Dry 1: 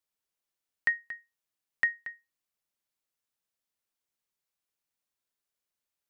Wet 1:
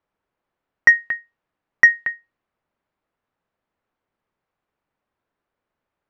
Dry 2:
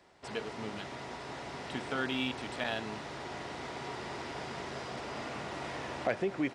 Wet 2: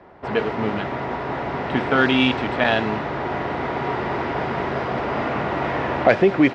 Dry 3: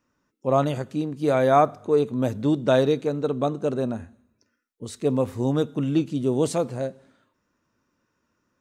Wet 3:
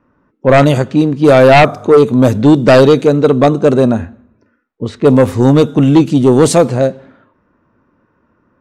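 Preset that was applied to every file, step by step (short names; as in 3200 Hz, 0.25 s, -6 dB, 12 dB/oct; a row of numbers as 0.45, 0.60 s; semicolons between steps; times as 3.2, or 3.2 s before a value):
low-pass opened by the level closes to 1400 Hz, open at -20 dBFS; sine folder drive 9 dB, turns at -5.5 dBFS; gain +4 dB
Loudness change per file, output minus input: +15.0, +16.0, +14.5 LU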